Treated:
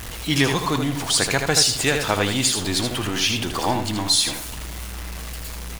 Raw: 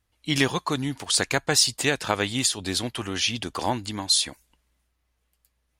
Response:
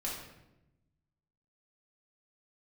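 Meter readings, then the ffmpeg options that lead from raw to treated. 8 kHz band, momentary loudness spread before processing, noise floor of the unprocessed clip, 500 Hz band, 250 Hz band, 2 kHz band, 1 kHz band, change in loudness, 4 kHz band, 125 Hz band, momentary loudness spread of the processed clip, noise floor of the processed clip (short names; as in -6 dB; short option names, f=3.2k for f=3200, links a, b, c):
+3.5 dB, 9 LU, -74 dBFS, +4.0 dB, +4.5 dB, +3.5 dB, +4.5 dB, +4.0 dB, +3.5 dB, +6.0 dB, 15 LU, -33 dBFS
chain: -filter_complex "[0:a]aeval=exprs='val(0)+0.5*0.0376*sgn(val(0))':c=same,aecho=1:1:79:0.501,asplit=2[a][b];[1:a]atrim=start_sample=2205,asetrate=26460,aresample=44100[c];[b][c]afir=irnorm=-1:irlink=0,volume=-17.5dB[d];[a][d]amix=inputs=2:normalize=0"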